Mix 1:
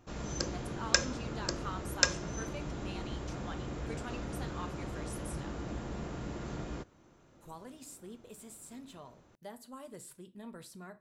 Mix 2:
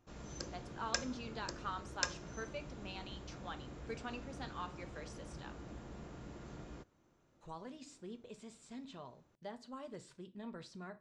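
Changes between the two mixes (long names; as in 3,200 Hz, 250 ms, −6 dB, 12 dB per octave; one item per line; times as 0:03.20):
speech: add low-pass filter 6,000 Hz 24 dB per octave
background −10.0 dB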